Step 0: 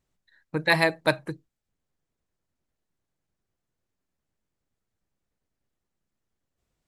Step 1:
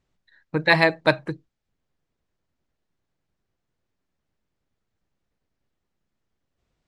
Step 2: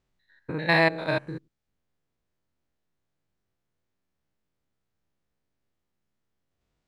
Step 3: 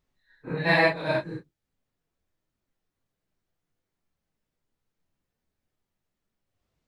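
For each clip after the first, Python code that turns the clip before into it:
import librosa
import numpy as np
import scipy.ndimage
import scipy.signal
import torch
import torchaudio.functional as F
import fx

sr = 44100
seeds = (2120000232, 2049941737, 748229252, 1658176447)

y1 = scipy.signal.sosfilt(scipy.signal.butter(2, 5400.0, 'lowpass', fs=sr, output='sos'), x)
y1 = y1 * 10.0 ** (4.0 / 20.0)
y2 = fx.spec_steps(y1, sr, hold_ms=100)
y2 = y2 * 10.0 ** (-1.0 / 20.0)
y3 = fx.phase_scramble(y2, sr, seeds[0], window_ms=100)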